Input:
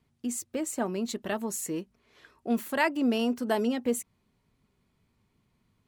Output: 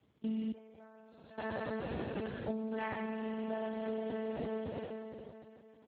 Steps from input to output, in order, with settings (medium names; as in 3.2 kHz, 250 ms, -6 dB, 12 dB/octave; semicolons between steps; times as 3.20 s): spectral sustain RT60 2.71 s; high-pass 150 Hz 12 dB/octave; 2.50–3.54 s: bass shelf 340 Hz +7.5 dB; echo from a far wall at 68 m, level -14 dB; monotone LPC vocoder at 8 kHz 220 Hz; compression 20:1, threshold -34 dBFS, peak gain reduction 21 dB; de-hum 208.8 Hz, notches 10; 0.52–1.38 s: gate -33 dBFS, range -19 dB; trim +4 dB; Speex 8 kbps 16 kHz